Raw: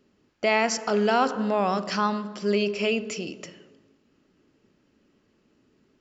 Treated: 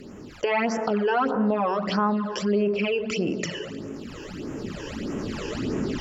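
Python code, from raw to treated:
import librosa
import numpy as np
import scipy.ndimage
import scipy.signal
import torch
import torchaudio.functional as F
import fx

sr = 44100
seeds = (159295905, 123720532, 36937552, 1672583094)

y = fx.recorder_agc(x, sr, target_db=-14.0, rise_db_per_s=11.0, max_gain_db=30)
y = fx.env_lowpass_down(y, sr, base_hz=2400.0, full_db=-23.0)
y = fx.phaser_stages(y, sr, stages=12, low_hz=210.0, high_hz=4300.0, hz=1.6, feedback_pct=25)
y = fx.env_flatten(y, sr, amount_pct=50)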